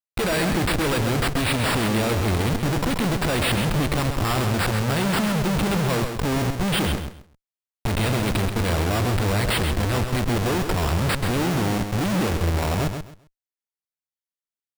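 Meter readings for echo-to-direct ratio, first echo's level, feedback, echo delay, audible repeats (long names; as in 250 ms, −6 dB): −7.0 dB, −7.0 dB, 22%, 132 ms, 3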